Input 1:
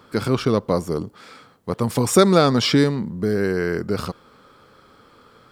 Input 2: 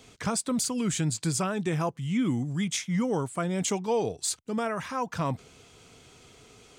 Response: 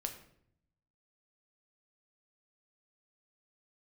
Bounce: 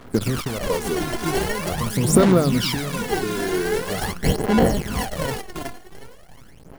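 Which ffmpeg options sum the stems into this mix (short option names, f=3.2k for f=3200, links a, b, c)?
-filter_complex "[0:a]bandreject=f=820:w=5.1,acompressor=threshold=-18dB:ratio=6,volume=-4dB,asplit=2[a][b];[1:a]highshelf=f=9.8k:g=10,acrusher=samples=36:mix=1:aa=0.000001,volume=2.5dB,asplit=2[c][d];[d]volume=-7.5dB[e];[b]apad=whole_len=299370[f];[c][f]sidechaincompress=threshold=-34dB:ratio=8:attack=16:release=225[g];[e]aecho=0:1:366|732|1098|1464|1830|2196:1|0.43|0.185|0.0795|0.0342|0.0147[h];[a][g][h]amix=inputs=3:normalize=0,acrusher=bits=6:dc=4:mix=0:aa=0.000001,equalizer=f=10k:t=o:w=0.28:g=4.5,aphaser=in_gain=1:out_gain=1:delay=2.9:decay=0.7:speed=0.44:type=sinusoidal"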